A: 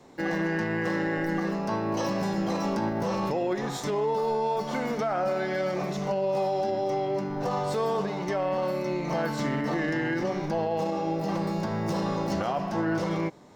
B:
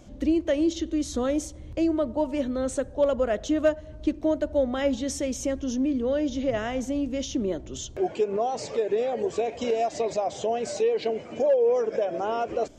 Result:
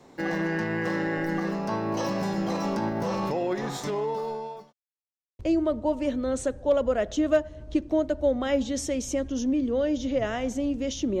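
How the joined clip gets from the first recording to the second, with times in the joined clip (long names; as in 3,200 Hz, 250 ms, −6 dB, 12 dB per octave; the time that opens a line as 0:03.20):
A
0:03.55–0:04.73: fade out equal-power
0:04.73–0:05.39: silence
0:05.39: continue with B from 0:01.71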